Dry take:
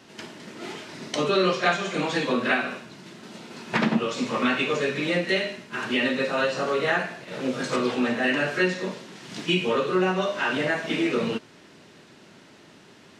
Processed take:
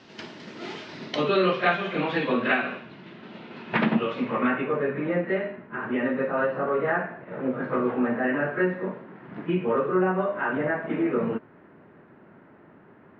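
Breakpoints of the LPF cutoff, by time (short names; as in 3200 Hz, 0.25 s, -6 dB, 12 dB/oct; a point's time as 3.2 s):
LPF 24 dB/oct
0.83 s 5400 Hz
1.48 s 3200 Hz
3.99 s 3200 Hz
4.68 s 1700 Hz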